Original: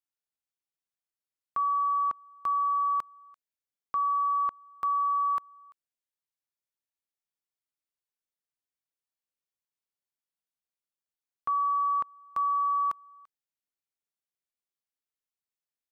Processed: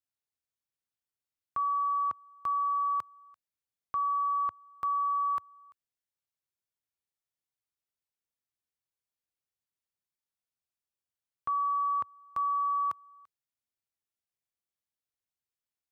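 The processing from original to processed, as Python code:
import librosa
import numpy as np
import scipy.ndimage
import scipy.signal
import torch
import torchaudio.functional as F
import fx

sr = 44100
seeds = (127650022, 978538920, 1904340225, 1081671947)

y = fx.peak_eq(x, sr, hz=93.0, db=9.0, octaves=1.3)
y = y * 10.0 ** (-2.5 / 20.0)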